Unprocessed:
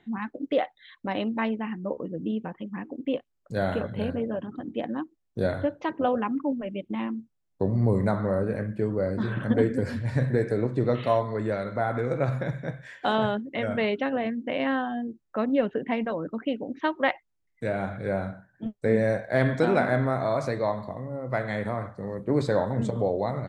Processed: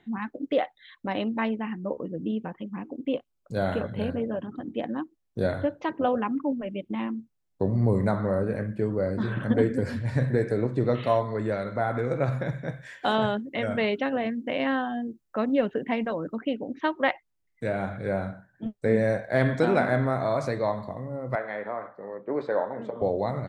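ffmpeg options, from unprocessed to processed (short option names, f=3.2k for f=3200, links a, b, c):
-filter_complex "[0:a]asettb=1/sr,asplit=3[a][b][c];[a]atrim=end=2.664[d];[b]atrim=start=2.66:end=3.66,asetpts=PTS-STARTPTS,afade=t=in:d=0.004:c=qsin,afade=t=out:st=0.996:d=0.004:c=qsin,equalizer=f=1.8k:w=7.4:g=-11[e];[c]atrim=start=3.656[f];[d][e]acrossfade=d=0.004:c1=hsin:c2=qsin[g];[g][f]acrossfade=d=0.004:c1=qsin:c2=hsin,asettb=1/sr,asplit=3[h][i][j];[h]atrim=end=12.694[k];[i]atrim=start=12.69:end=16.36,asetpts=PTS-STARTPTS,afade=t=in:d=0.004:c=qsin,afade=t=out:st=3.666:d=0.004:c=qsin,highshelf=f=5.8k:g=6.5[l];[j]atrim=start=16.356[m];[k][l]acrossfade=d=0.004:c1=hsin:c2=qsin[n];[n][m]acrossfade=d=0.004:c1=qsin:c2=hsin,asettb=1/sr,asplit=3[o][p][q];[o]atrim=end=21.354[r];[p]atrim=start=21.35:end=23.02,asetpts=PTS-STARTPTS,afade=t=in:d=0.004:c=qsin,afade=t=out:st=1.666:d=0.004:c=qsin,highpass=410,lowpass=2k[s];[q]atrim=start=23.016[t];[r][s]acrossfade=d=0.004:c1=hsin:c2=qsin[u];[u][t]acrossfade=d=0.004:c1=qsin:c2=hsin"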